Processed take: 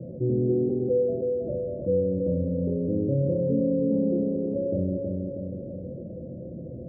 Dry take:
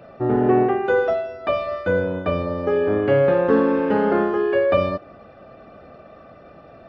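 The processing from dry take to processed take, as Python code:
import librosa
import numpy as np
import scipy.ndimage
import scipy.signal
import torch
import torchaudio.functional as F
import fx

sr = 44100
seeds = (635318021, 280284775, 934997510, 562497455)

y = scipy.signal.sosfilt(scipy.signal.cheby1(6, 6, 520.0, 'lowpass', fs=sr, output='sos'), x)
y = fx.tilt_eq(y, sr, slope=4.0)
y = fx.hum_notches(y, sr, base_hz=50, count=7)
y = y + 0.86 * np.pad(y, (int(1.2 * sr / 1000.0), 0))[:len(y)]
y = fx.echo_feedback(y, sr, ms=320, feedback_pct=40, wet_db=-7.5)
y = fx.env_flatten(y, sr, amount_pct=50)
y = y * librosa.db_to_amplitude(6.5)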